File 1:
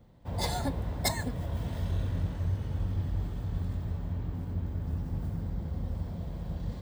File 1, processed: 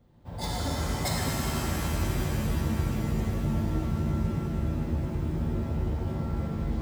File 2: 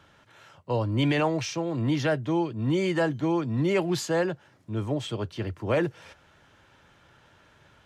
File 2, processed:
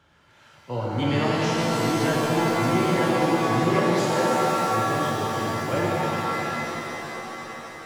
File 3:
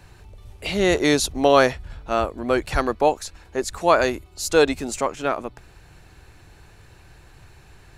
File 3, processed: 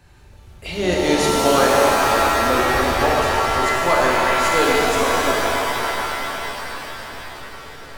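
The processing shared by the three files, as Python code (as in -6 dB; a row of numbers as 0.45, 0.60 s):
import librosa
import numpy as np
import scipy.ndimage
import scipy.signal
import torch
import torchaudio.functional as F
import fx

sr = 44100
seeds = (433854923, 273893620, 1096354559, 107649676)

p1 = x + fx.echo_swing(x, sr, ms=1059, ratio=3, feedback_pct=69, wet_db=-24.0, dry=0)
p2 = fx.rev_shimmer(p1, sr, seeds[0], rt60_s=3.9, semitones=7, shimmer_db=-2, drr_db=-4.0)
y = p2 * 10.0 ** (-4.5 / 20.0)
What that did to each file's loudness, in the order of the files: +4.0, +4.0, +4.0 LU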